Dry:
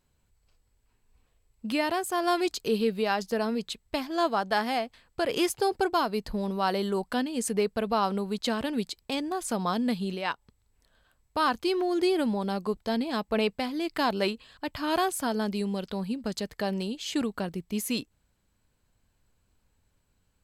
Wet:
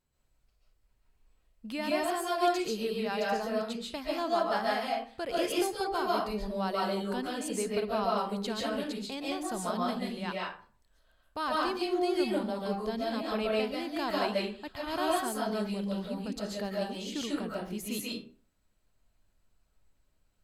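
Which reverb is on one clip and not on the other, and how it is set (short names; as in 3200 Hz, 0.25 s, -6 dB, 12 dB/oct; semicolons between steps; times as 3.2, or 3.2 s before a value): digital reverb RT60 0.43 s, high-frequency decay 0.65×, pre-delay 0.1 s, DRR -4.5 dB; gain -8.5 dB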